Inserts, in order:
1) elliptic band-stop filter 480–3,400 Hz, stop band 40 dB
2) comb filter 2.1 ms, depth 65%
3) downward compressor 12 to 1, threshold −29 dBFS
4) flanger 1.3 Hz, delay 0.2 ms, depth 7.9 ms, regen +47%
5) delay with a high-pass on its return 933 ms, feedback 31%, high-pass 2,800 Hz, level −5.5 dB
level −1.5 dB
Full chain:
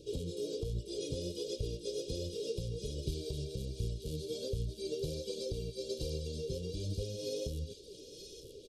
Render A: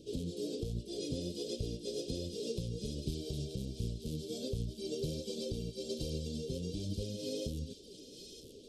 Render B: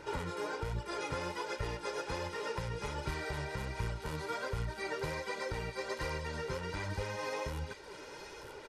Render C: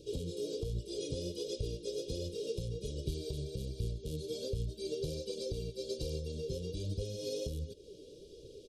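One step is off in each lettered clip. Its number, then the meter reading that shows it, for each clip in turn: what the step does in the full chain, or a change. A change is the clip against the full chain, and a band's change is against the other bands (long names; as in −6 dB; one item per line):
2, 250 Hz band +4.5 dB
1, 2 kHz band +24.0 dB
5, echo-to-direct ratio −13.0 dB to none audible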